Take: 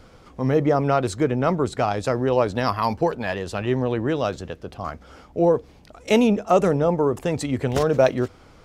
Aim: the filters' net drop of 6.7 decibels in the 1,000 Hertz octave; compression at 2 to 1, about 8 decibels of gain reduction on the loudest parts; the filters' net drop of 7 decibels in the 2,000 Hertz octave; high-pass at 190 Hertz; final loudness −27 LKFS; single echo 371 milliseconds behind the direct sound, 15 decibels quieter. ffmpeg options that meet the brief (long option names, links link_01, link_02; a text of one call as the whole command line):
ffmpeg -i in.wav -af "highpass=190,equalizer=frequency=1000:width_type=o:gain=-8.5,equalizer=frequency=2000:width_type=o:gain=-6.5,acompressor=threshold=-30dB:ratio=2,aecho=1:1:371:0.178,volume=4dB" out.wav